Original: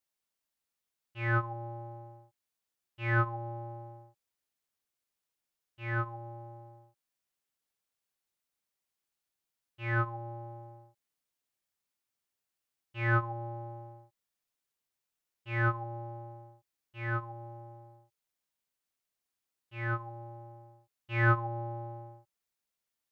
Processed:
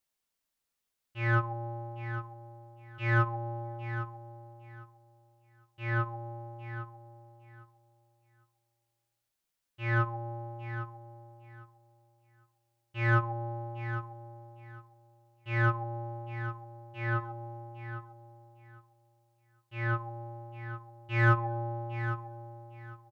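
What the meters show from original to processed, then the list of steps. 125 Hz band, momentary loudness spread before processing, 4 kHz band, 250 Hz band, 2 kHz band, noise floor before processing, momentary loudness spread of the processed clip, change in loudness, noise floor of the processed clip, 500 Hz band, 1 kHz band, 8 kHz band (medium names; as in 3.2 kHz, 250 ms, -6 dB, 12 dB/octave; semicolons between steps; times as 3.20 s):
+3.5 dB, 21 LU, +3.5 dB, +2.0 dB, +1.5 dB, under -85 dBFS, 22 LU, +0.5 dB, -85 dBFS, +2.0 dB, +2.0 dB, no reading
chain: bass shelf 65 Hz +6 dB; in parallel at -10.5 dB: saturation -30 dBFS, distortion -8 dB; on the sum: feedback delay 806 ms, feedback 19%, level -11 dB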